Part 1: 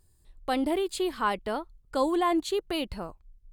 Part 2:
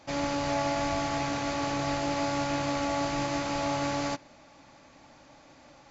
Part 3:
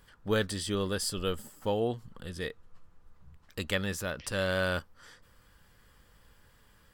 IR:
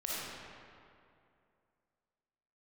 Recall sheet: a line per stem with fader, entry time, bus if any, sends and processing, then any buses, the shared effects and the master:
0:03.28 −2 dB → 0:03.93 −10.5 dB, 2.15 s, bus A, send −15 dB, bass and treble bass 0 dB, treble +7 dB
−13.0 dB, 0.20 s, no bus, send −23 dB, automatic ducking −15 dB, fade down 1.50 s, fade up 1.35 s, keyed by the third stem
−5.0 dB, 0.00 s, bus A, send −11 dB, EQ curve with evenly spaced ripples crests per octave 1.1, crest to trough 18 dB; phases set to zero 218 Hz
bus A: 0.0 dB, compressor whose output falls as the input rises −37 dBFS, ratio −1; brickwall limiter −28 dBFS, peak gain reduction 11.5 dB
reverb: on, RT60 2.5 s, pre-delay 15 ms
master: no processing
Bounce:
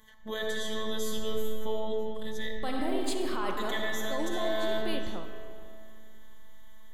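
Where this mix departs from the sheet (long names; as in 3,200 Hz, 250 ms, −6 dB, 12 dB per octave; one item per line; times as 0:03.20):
stem 1: missing bass and treble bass 0 dB, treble +7 dB
stem 2: muted
reverb return +7.5 dB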